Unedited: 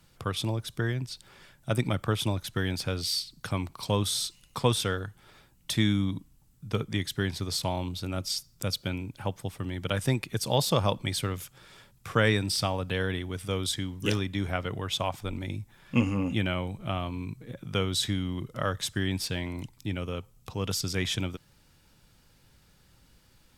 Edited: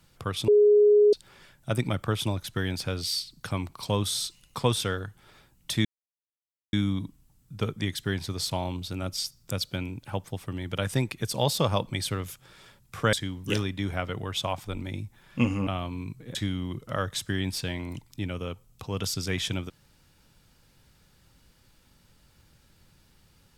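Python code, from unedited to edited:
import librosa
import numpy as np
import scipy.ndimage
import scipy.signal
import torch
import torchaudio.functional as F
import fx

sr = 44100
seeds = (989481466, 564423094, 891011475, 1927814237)

y = fx.edit(x, sr, fx.bleep(start_s=0.48, length_s=0.65, hz=416.0, db=-14.5),
    fx.insert_silence(at_s=5.85, length_s=0.88),
    fx.cut(start_s=12.25, length_s=1.44),
    fx.cut(start_s=16.23, length_s=0.65),
    fx.cut(start_s=17.56, length_s=0.46), tone=tone)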